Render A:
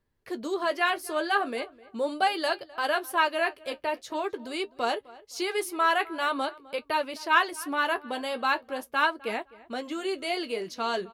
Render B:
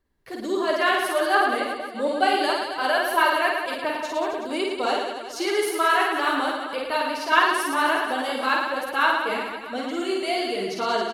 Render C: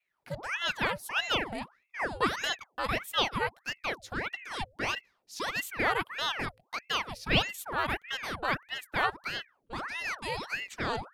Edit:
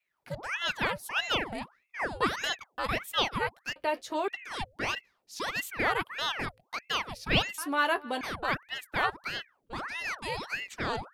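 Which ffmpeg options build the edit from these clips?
-filter_complex "[0:a]asplit=2[a][b];[2:a]asplit=3[c][d][e];[c]atrim=end=3.762[f];[a]atrim=start=3.758:end=4.282[g];[d]atrim=start=4.278:end=7.582[h];[b]atrim=start=7.578:end=8.212[i];[e]atrim=start=8.208[j];[f][g]acrossfade=d=0.004:c1=hsin:c2=hsin[k];[k][h]acrossfade=d=0.004:c1=hsin:c2=hsin[l];[l][i]acrossfade=d=0.004:c1=hsin:c2=hsin[m];[m][j]acrossfade=d=0.004:c1=hsin:c2=hsin"

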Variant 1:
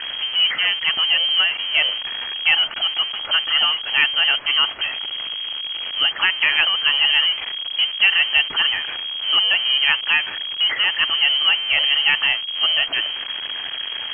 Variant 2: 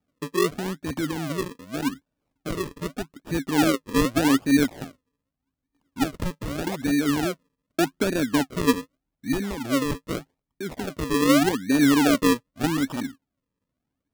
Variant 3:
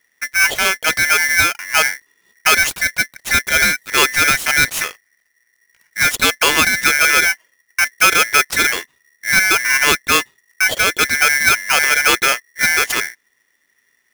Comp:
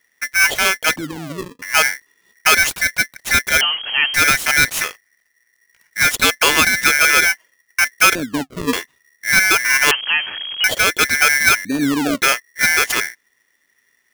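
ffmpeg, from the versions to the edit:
-filter_complex "[1:a]asplit=3[a][b][c];[0:a]asplit=2[d][e];[2:a]asplit=6[f][g][h][i][j][k];[f]atrim=end=0.962[l];[a]atrim=start=0.958:end=1.622[m];[g]atrim=start=1.618:end=3.612[n];[d]atrim=start=3.608:end=4.142[o];[h]atrim=start=4.138:end=8.152[p];[b]atrim=start=8.148:end=8.732[q];[i]atrim=start=8.728:end=9.912[r];[e]atrim=start=9.908:end=10.642[s];[j]atrim=start=10.638:end=11.652[t];[c]atrim=start=11.648:end=12.212[u];[k]atrim=start=12.208[v];[l][m]acrossfade=d=0.004:c1=hsin:c2=hsin[w];[w][n]acrossfade=d=0.004:c1=hsin:c2=hsin[x];[x][o]acrossfade=d=0.004:c1=hsin:c2=hsin[y];[y][p]acrossfade=d=0.004:c1=hsin:c2=hsin[z];[z][q]acrossfade=d=0.004:c1=hsin:c2=hsin[aa];[aa][r]acrossfade=d=0.004:c1=hsin:c2=hsin[ab];[ab][s]acrossfade=d=0.004:c1=hsin:c2=hsin[ac];[ac][t]acrossfade=d=0.004:c1=hsin:c2=hsin[ad];[ad][u]acrossfade=d=0.004:c1=hsin:c2=hsin[ae];[ae][v]acrossfade=d=0.004:c1=hsin:c2=hsin"

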